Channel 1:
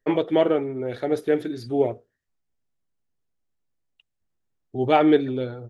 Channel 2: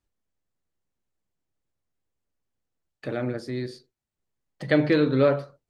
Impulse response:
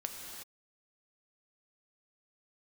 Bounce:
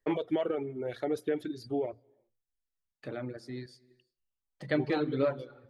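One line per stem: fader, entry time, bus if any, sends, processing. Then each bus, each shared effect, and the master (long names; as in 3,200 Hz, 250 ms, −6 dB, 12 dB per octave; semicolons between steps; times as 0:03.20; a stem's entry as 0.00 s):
−5.5 dB, 0.00 s, send −18.5 dB, mains-hum notches 60/120 Hz; brickwall limiter −16 dBFS, peak gain reduction 10 dB; automatic ducking −7 dB, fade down 1.70 s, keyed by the second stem
−11.0 dB, 0.00 s, send −7.5 dB, no processing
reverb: on, pre-delay 3 ms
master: reverb reduction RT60 0.95 s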